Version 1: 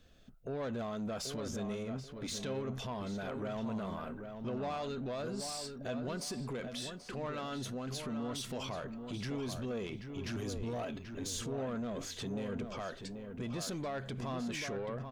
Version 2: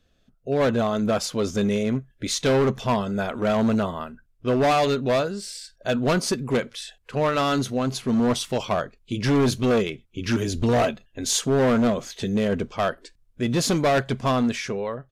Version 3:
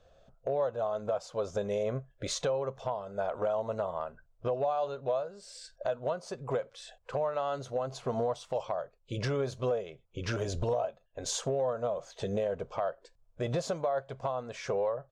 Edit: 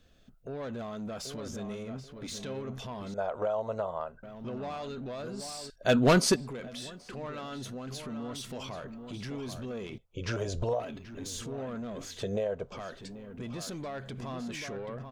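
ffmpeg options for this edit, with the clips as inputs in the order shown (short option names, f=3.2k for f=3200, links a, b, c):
-filter_complex "[2:a]asplit=3[a][b][c];[0:a]asplit=5[d][e][f][g][h];[d]atrim=end=3.142[i];[a]atrim=start=3.138:end=4.232[j];[e]atrim=start=4.228:end=5.702[k];[1:a]atrim=start=5.698:end=6.362[l];[f]atrim=start=6.358:end=9.982[m];[b]atrim=start=9.978:end=10.802[n];[g]atrim=start=10.798:end=12.232[o];[c]atrim=start=12.228:end=12.722[p];[h]atrim=start=12.718[q];[i][j]acrossfade=d=0.004:c1=hsin:c2=hsin[r];[r][k]acrossfade=d=0.004:c1=hsin:c2=hsin[s];[s][l]acrossfade=d=0.004:c1=hsin:c2=hsin[t];[t][m]acrossfade=d=0.004:c1=hsin:c2=hsin[u];[u][n]acrossfade=d=0.004:c1=hsin:c2=hsin[v];[v][o]acrossfade=d=0.004:c1=hsin:c2=hsin[w];[w][p]acrossfade=d=0.004:c1=hsin:c2=hsin[x];[x][q]acrossfade=d=0.004:c1=hsin:c2=hsin"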